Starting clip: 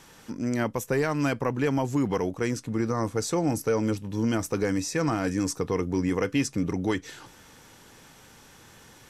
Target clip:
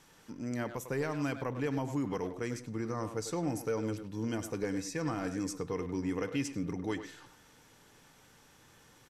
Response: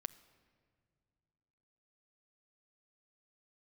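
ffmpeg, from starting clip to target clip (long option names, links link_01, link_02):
-filter_complex "[0:a]asettb=1/sr,asplit=3[link_01][link_02][link_03];[link_01]atrim=end=4.344[link_04];[link_02]atrim=start=4.34:end=5.02,asetpts=PTS-STARTPTS,afade=type=in:duration=0.004:curve=qsin,afade=type=out:start_time=0.676:duration=0.004:curve=qsin,bandreject=frequency=1300:width=8.1[link_05];[link_03]atrim=start=5.016[link_06];[link_04][link_05]acrossfade=duration=0.004:curve1=hsin:curve2=qsin[link_07];[link_07][link_06]acrossfade=duration=0.004:curve1=qsin:curve2=hsin,asplit=2[link_08][link_09];[link_09]adelay=100,highpass=300,lowpass=3400,asoftclip=type=hard:threshold=-22dB,volume=-8dB[link_10];[link_08][link_10]amix=inputs=2:normalize=0[link_11];[1:a]atrim=start_sample=2205,afade=type=out:start_time=0.22:duration=0.01,atrim=end_sample=10143[link_12];[link_11][link_12]afir=irnorm=-1:irlink=0,volume=-6dB"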